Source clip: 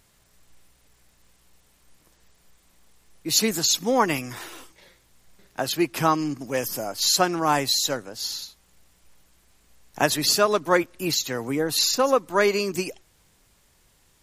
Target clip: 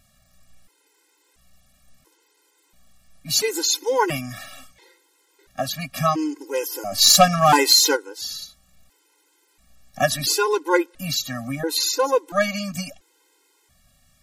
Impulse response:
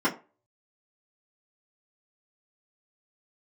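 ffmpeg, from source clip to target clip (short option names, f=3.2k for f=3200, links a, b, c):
-filter_complex "[0:a]asplit=3[a][b][c];[a]afade=t=out:st=6.91:d=0.02[d];[b]aeval=exprs='0.473*sin(PI/2*1.78*val(0)/0.473)':c=same,afade=t=in:st=6.91:d=0.02,afade=t=out:st=7.95:d=0.02[e];[c]afade=t=in:st=7.95:d=0.02[f];[d][e][f]amix=inputs=3:normalize=0,afftfilt=real='re*gt(sin(2*PI*0.73*pts/sr)*(1-2*mod(floor(b*sr/1024/270),2)),0)':imag='im*gt(sin(2*PI*0.73*pts/sr)*(1-2*mod(floor(b*sr/1024/270),2)),0)':win_size=1024:overlap=0.75,volume=3.5dB"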